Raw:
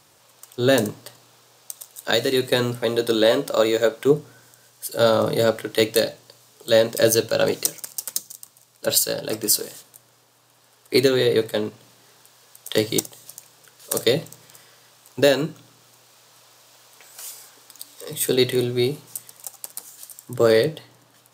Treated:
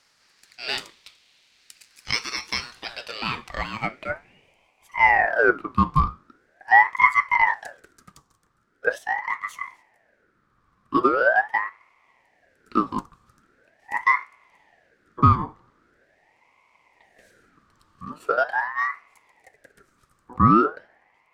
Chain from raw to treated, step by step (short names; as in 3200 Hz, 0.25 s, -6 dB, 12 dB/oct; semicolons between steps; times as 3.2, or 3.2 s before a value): octaver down 2 oct, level -2 dB; band-pass sweep 3100 Hz -> 530 Hz, 2.63–5.35; ring modulator with a swept carrier 1100 Hz, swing 45%, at 0.42 Hz; gain +5.5 dB